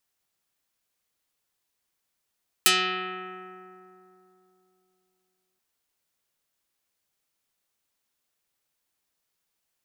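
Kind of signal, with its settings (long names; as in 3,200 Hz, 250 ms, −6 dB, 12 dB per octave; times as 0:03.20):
Karplus-Strong string F#3, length 2.93 s, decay 3.31 s, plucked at 0.34, dark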